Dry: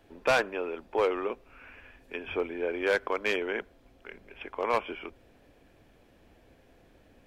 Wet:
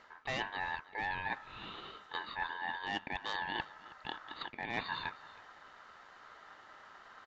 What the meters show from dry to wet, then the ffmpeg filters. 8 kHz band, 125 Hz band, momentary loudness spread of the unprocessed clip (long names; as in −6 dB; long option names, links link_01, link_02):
can't be measured, −1.0 dB, 21 LU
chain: -af "areverse,acompressor=threshold=-38dB:ratio=16,areverse,aeval=exprs='val(0)*sin(2*PI*1300*n/s)':channel_layout=same,aecho=1:1:320:0.106,aresample=16000,aresample=44100,volume=6.5dB"